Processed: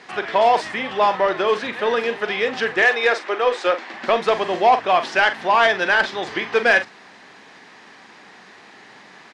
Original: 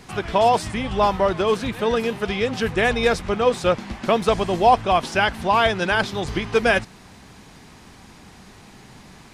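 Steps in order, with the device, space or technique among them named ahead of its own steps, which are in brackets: 2.82–3.94 elliptic band-pass 300–9100 Hz; intercom (BPF 380–4700 Hz; bell 1800 Hz +7 dB 0.36 oct; soft clip -8.5 dBFS, distortion -19 dB; doubler 43 ms -10.5 dB); gain +2.5 dB

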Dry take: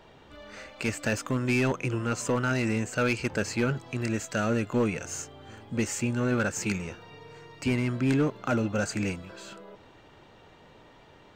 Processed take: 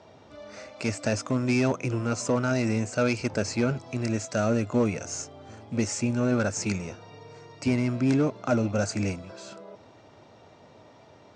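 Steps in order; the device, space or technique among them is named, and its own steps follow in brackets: car door speaker with a rattle (rattling part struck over -36 dBFS, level -42 dBFS; speaker cabinet 90–8500 Hz, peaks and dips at 100 Hz +7 dB, 250 Hz +3 dB, 640 Hz +7 dB, 1700 Hz -5 dB, 3000 Hz -6 dB, 5500 Hz +7 dB)

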